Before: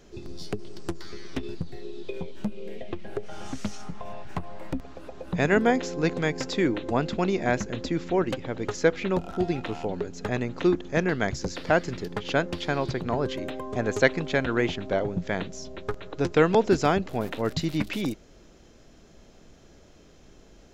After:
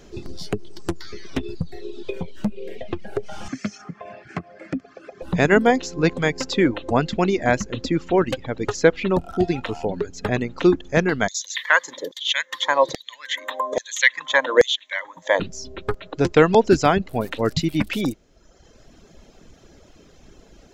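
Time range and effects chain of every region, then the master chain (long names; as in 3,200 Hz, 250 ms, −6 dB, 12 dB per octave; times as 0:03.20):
0:03.48–0:05.22: loudspeaker in its box 130–7,000 Hz, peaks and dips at 510 Hz −4 dB, 860 Hz −7 dB, 1,900 Hz +9 dB, 3,700 Hz −8 dB + notch comb filter 950 Hz
0:11.28–0:15.40: EQ curve with evenly spaced ripples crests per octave 1.1, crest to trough 13 dB + auto-filter high-pass saw down 1.2 Hz 460–5,100 Hz
whole clip: reverb reduction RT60 1.1 s; boost into a limiter +7.5 dB; level −1 dB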